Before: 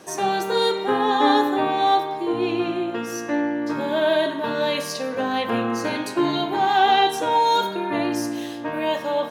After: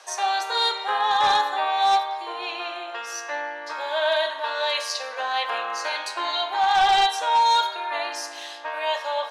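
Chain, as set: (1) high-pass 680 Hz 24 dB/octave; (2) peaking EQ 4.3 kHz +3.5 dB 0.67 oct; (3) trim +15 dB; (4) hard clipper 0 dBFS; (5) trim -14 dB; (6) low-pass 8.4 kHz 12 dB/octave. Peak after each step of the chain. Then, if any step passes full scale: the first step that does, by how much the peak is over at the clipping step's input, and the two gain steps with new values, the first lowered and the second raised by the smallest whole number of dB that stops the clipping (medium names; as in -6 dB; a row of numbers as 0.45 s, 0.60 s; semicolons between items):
-6.5 dBFS, -6.0 dBFS, +9.0 dBFS, 0.0 dBFS, -14.0 dBFS, -13.5 dBFS; step 3, 9.0 dB; step 3 +6 dB, step 5 -5 dB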